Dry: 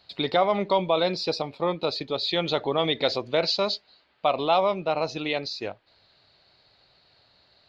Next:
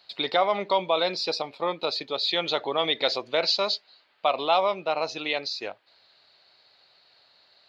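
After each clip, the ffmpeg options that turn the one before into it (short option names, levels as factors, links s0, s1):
-af "highpass=f=660:p=1,volume=1.26"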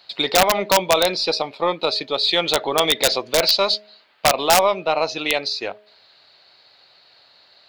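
-af "aeval=exprs='(mod(4.22*val(0)+1,2)-1)/4.22':c=same,aeval=exprs='0.237*(cos(1*acos(clip(val(0)/0.237,-1,1)))-cos(1*PI/2))+0.00266*(cos(6*acos(clip(val(0)/0.237,-1,1)))-cos(6*PI/2))':c=same,bandreject=f=209.8:t=h:w=4,bandreject=f=419.6:t=h:w=4,bandreject=f=629.4:t=h:w=4,volume=2.24"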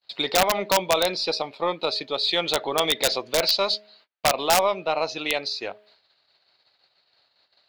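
-af "agate=range=0.0224:threshold=0.00282:ratio=16:detection=peak,volume=0.596"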